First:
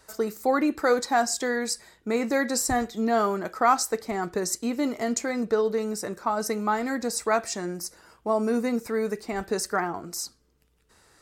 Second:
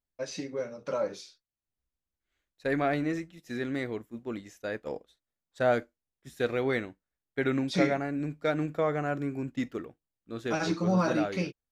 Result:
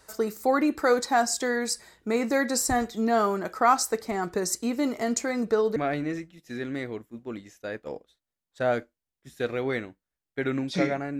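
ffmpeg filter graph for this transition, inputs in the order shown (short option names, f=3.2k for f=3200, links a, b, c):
-filter_complex "[0:a]apad=whole_dur=11.19,atrim=end=11.19,atrim=end=5.762[a];[1:a]atrim=start=2.758:end=8.19[b];[a][b]acrossfade=d=0.004:c1=hsin:c2=hsin"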